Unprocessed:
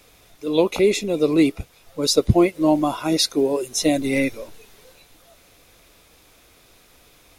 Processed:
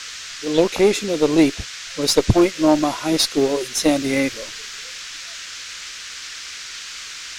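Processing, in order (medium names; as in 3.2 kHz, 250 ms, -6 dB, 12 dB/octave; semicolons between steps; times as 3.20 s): Chebyshev shaper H 4 -18 dB, 5 -16 dB, 7 -19 dB, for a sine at -2 dBFS; band noise 1.3–6.8 kHz -34 dBFS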